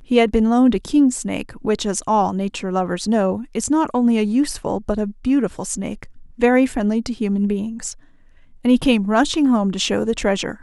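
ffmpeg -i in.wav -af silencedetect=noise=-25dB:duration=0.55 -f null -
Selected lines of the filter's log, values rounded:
silence_start: 7.92
silence_end: 8.65 | silence_duration: 0.73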